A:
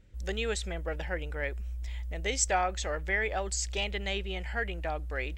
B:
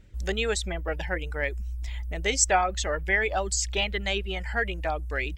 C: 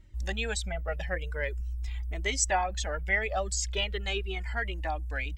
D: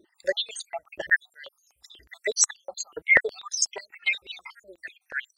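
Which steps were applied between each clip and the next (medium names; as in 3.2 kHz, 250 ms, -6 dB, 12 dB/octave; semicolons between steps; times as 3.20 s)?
reverb removal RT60 0.71 s; band-stop 510 Hz, Q 12; trim +6 dB
Shepard-style flanger falling 0.43 Hz
random holes in the spectrogram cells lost 69%; step-sequenced high-pass 8.2 Hz 360–6100 Hz; trim +5.5 dB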